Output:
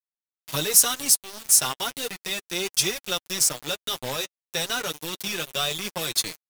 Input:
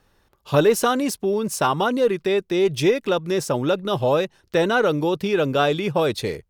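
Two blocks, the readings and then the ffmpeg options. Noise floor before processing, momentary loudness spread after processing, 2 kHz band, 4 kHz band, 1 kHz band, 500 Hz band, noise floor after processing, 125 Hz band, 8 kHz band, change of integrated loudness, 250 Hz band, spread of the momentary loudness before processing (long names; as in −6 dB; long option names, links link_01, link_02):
−64 dBFS, 12 LU, −4.5 dB, +5.0 dB, −10.0 dB, −15.5 dB, below −85 dBFS, −12.5 dB, +13.0 dB, −2.5 dB, −15.0 dB, 4 LU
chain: -filter_complex "[0:a]agate=range=-33dB:threshold=-46dB:ratio=3:detection=peak,tiltshelf=frequency=1300:gain=-9,acontrast=79,bass=frequency=250:gain=6,treble=frequency=4000:gain=13,acrossover=split=160|3000[link_01][link_02][link_03];[link_02]acompressor=threshold=-10dB:ratio=6[link_04];[link_01][link_04][link_03]amix=inputs=3:normalize=0,aeval=exprs='val(0)*gte(abs(val(0)),0.2)':channel_layout=same,flanger=delay=5.1:depth=3:regen=-16:speed=0.35:shape=triangular,volume=-10dB"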